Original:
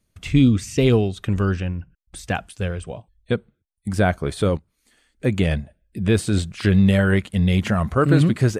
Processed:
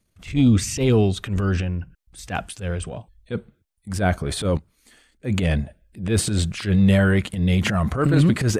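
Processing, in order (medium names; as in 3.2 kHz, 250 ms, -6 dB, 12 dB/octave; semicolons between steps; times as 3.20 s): transient shaper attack -11 dB, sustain +7 dB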